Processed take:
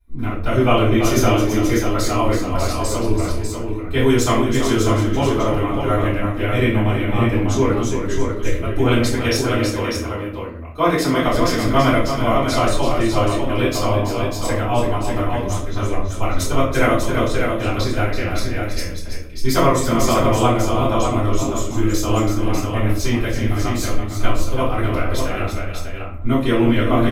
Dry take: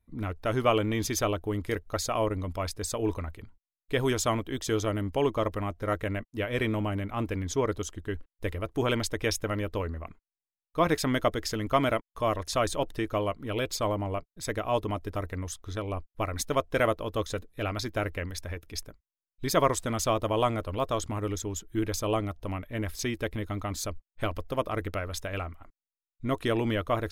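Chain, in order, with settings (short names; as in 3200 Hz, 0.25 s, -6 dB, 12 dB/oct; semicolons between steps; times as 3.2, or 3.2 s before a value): 8.97–11.27 HPF 160 Hz 6 dB/oct; tapped delay 0.332/0.596 s -8/-5.5 dB; shoebox room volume 50 m³, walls mixed, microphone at 3.1 m; gain -4.5 dB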